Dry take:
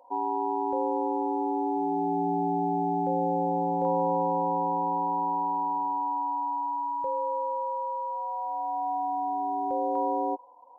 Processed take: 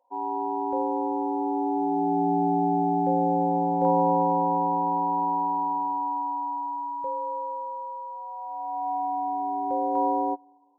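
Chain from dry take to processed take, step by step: Schroeder reverb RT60 1.7 s, combs from 31 ms, DRR 16.5 dB; upward expansion 2.5:1, over -37 dBFS; trim +4.5 dB

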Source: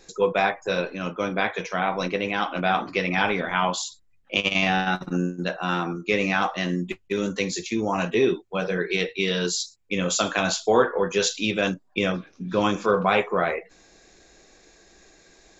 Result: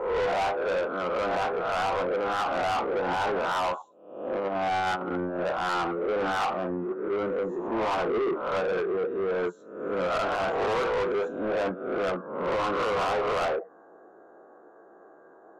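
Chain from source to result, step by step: reverse spectral sustain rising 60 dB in 0.69 s; elliptic low-pass 1.4 kHz, stop band 40 dB; peak limiter -14 dBFS, peak gain reduction 8 dB; high-pass 400 Hz 12 dB/octave; saturation -30.5 dBFS, distortion -7 dB; trim +6.5 dB

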